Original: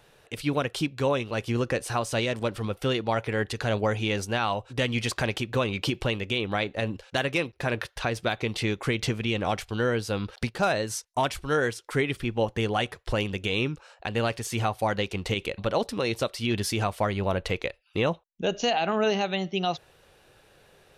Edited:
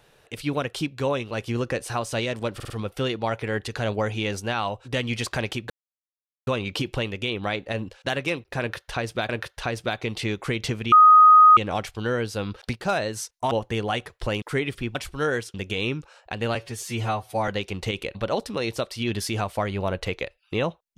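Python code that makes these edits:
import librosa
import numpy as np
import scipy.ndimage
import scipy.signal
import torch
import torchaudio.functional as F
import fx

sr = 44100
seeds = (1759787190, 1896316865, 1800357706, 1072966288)

y = fx.edit(x, sr, fx.stutter(start_s=2.55, slice_s=0.05, count=4),
    fx.insert_silence(at_s=5.55, length_s=0.77),
    fx.repeat(start_s=7.68, length_s=0.69, count=2),
    fx.insert_tone(at_s=9.31, length_s=0.65, hz=1250.0, db=-8.5),
    fx.swap(start_s=11.25, length_s=0.59, other_s=12.37, other_length_s=0.91),
    fx.stretch_span(start_s=14.29, length_s=0.62, factor=1.5), tone=tone)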